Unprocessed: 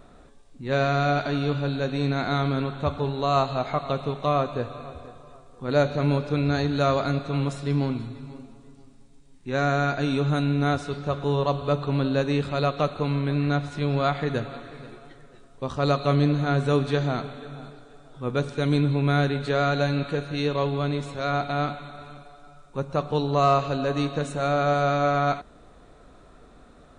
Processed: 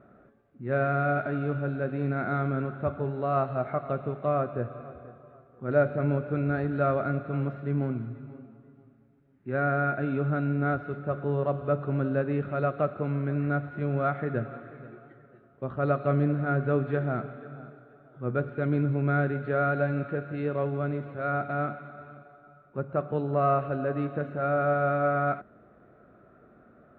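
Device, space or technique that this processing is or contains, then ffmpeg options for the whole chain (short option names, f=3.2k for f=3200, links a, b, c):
bass cabinet: -af "highpass=83,equalizer=f=120:t=q:w=4:g=9,equalizer=f=210:t=q:w=4:g=8,equalizer=f=360:t=q:w=4:g=7,equalizer=f=610:t=q:w=4:g=7,equalizer=f=970:t=q:w=4:g=-6,equalizer=f=1.4k:t=q:w=4:g=8,lowpass=f=2.2k:w=0.5412,lowpass=f=2.2k:w=1.3066,volume=-7.5dB"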